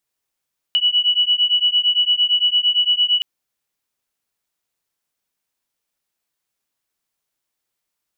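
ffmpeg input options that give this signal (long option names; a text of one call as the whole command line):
ffmpeg -f lavfi -i "aevalsrc='0.141*(sin(2*PI*2940*t)+sin(2*PI*2948.8*t))':duration=2.47:sample_rate=44100" out.wav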